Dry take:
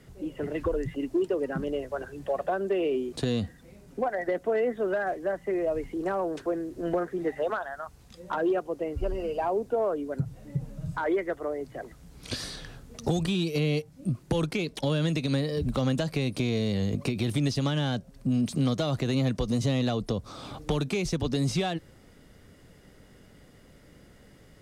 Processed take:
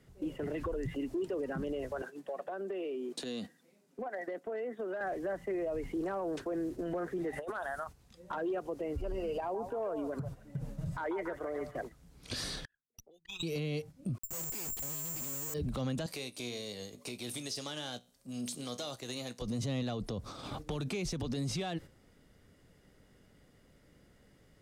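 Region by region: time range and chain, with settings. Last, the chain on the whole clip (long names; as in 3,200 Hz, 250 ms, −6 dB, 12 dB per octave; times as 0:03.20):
0:02.02–0:05.01: high-pass filter 200 Hz 24 dB per octave + downward compressor 16 to 1, threshold −34 dBFS + multiband upward and downward expander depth 40%
0:07.33–0:07.84: parametric band 9,800 Hz +10 dB 0.42 octaves + compressor whose output falls as the input rises −33 dBFS, ratio −0.5
0:09.40–0:11.77: downward compressor 5 to 1, threshold −32 dBFS + echo through a band-pass that steps 143 ms, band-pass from 810 Hz, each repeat 0.7 octaves, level −5 dB
0:12.65–0:13.43: spectral envelope exaggerated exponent 3 + high-pass with resonance 1,800 Hz, resonance Q 3.2 + windowed peak hold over 3 samples
0:14.18–0:15.54: comparator with hysteresis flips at −44.5 dBFS + bad sample-rate conversion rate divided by 6×, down filtered, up zero stuff + expander for the loud parts, over −40 dBFS
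0:16.06–0:19.42: bass and treble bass −14 dB, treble +12 dB + downward compressor 2 to 1, threshold −34 dBFS + tuned comb filter 61 Hz, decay 0.47 s
whole clip: noise gate −41 dBFS, range −9 dB; brickwall limiter −29 dBFS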